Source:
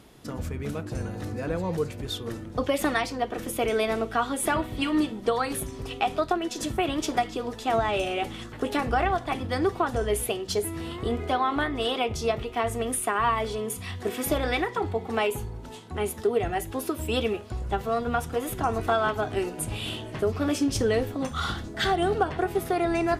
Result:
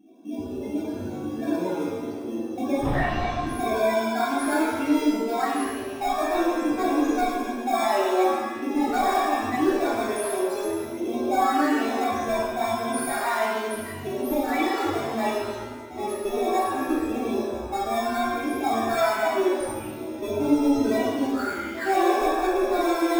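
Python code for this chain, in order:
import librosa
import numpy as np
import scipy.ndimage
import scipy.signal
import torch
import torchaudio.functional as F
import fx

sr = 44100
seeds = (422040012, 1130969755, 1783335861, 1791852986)

p1 = scipy.signal.sosfilt(scipy.signal.butter(2, 140.0, 'highpass', fs=sr, output='sos'), x)
p2 = fx.fixed_phaser(p1, sr, hz=730.0, stages=8)
p3 = fx.cheby_harmonics(p2, sr, harmonics=(3, 4, 5), levels_db=(-7, -18, -10), full_scale_db=-11.5)
p4 = fx.spec_topn(p3, sr, count=8)
p5 = fx.sample_hold(p4, sr, seeds[0], rate_hz=3000.0, jitter_pct=0)
p6 = p4 + F.gain(torch.from_numpy(p5), -6.0).numpy()
p7 = fx.lpc_vocoder(p6, sr, seeds[1], excitation='whisper', order=8, at=(2.79, 3.43))
p8 = fx.rev_shimmer(p7, sr, seeds[2], rt60_s=1.2, semitones=7, shimmer_db=-8, drr_db=-6.5)
y = F.gain(torch.from_numpy(p8), -3.5).numpy()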